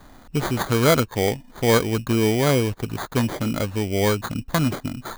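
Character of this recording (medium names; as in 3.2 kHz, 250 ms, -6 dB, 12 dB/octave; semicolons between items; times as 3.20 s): aliases and images of a low sample rate 2.7 kHz, jitter 0%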